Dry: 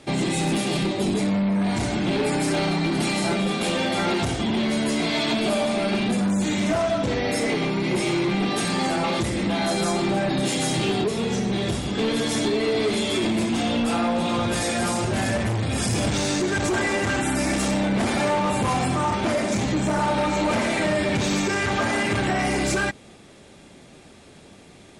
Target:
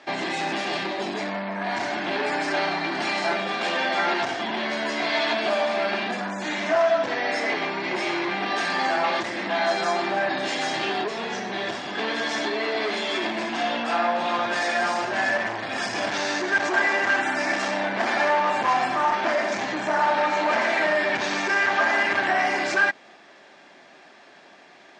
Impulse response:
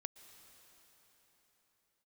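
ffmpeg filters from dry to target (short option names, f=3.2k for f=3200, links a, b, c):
-af "highpass=420,equalizer=f=470:t=q:w=4:g=-6,equalizer=f=690:t=q:w=4:g=5,equalizer=f=1k:t=q:w=4:g=4,equalizer=f=1.7k:t=q:w=4:g=9,equalizer=f=3.7k:t=q:w=4:g=-3,lowpass=f=5.6k:w=0.5412,lowpass=f=5.6k:w=1.3066"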